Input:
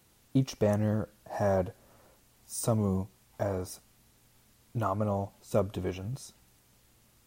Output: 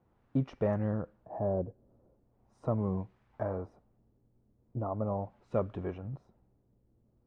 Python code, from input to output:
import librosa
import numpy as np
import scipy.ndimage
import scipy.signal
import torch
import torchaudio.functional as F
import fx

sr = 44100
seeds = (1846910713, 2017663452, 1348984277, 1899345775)

y = fx.quant_companded(x, sr, bits=8)
y = fx.filter_lfo_lowpass(y, sr, shape='sine', hz=0.4, low_hz=400.0, high_hz=1800.0, q=1.0)
y = y * librosa.db_to_amplitude(-3.5)